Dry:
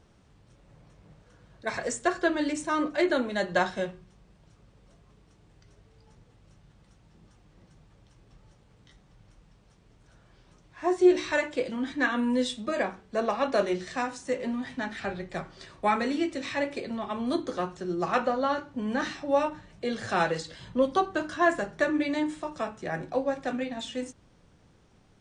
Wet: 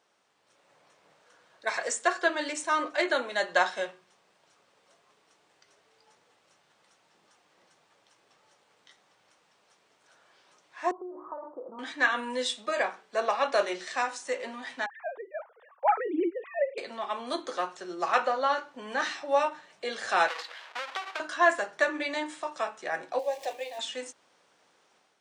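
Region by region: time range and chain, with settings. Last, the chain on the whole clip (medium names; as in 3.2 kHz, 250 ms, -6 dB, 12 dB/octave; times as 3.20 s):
10.91–11.79 s: compression 12:1, threshold -30 dBFS + rippled Chebyshev low-pass 1.3 kHz, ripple 3 dB
14.86–16.78 s: formants replaced by sine waves + Bessel low-pass 1.4 kHz + tilt EQ -3.5 dB/octave
20.28–21.20 s: square wave that keeps the level + band-pass 800–3500 Hz + compression 16:1, threshold -31 dBFS
23.19–23.79 s: jump at every zero crossing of -44.5 dBFS + upward compressor, threshold -33 dBFS + static phaser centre 570 Hz, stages 4
whole clip: high-pass 630 Hz 12 dB/octave; level rider gain up to 6 dB; trim -3 dB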